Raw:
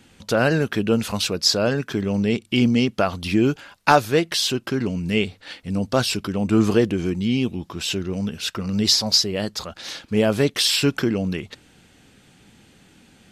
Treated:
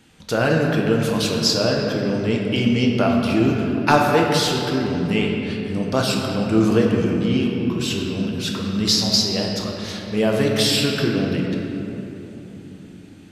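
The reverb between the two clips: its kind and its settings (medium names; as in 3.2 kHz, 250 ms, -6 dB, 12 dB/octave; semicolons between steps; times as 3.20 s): simulated room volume 210 m³, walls hard, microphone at 0.52 m; trim -2 dB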